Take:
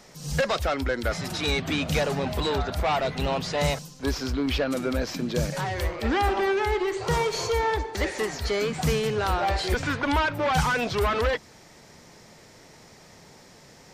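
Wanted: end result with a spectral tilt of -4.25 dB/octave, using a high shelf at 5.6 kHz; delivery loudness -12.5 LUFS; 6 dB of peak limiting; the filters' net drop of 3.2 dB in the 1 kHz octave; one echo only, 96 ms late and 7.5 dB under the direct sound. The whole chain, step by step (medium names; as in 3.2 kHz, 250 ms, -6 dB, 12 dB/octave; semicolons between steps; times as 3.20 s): peaking EQ 1 kHz -4 dB; treble shelf 5.6 kHz -7 dB; peak limiter -18.5 dBFS; delay 96 ms -7.5 dB; trim +15 dB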